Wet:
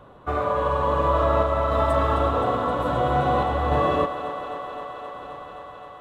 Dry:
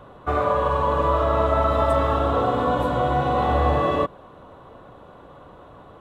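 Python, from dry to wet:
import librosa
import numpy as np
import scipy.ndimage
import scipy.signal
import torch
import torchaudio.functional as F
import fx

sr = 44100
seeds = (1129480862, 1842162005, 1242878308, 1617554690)

y = fx.tremolo_random(x, sr, seeds[0], hz=3.5, depth_pct=55)
y = fx.echo_thinned(y, sr, ms=262, feedback_pct=84, hz=210.0, wet_db=-11.0)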